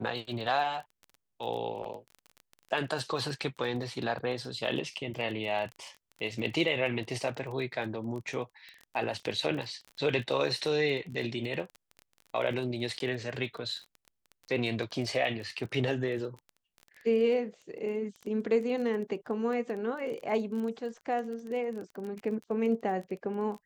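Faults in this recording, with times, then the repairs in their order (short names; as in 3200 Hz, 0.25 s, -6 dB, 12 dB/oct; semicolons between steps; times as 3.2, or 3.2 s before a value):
crackle 21/s -37 dBFS
12.99–13 gap 12 ms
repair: de-click; interpolate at 12.99, 12 ms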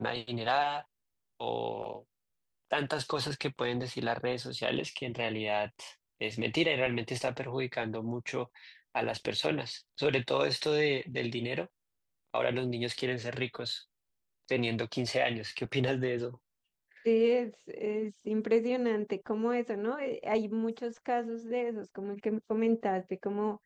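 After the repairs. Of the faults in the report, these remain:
none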